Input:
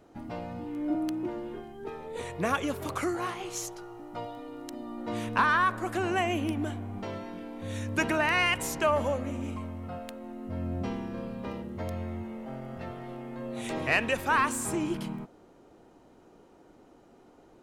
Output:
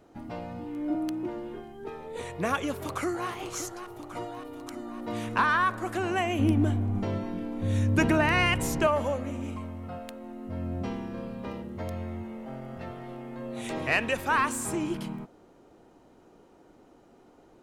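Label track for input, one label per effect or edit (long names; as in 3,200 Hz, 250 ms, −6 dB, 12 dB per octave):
2.730000	3.290000	delay throw 570 ms, feedback 70%, level −9.5 dB
6.390000	8.870000	low-shelf EQ 330 Hz +12 dB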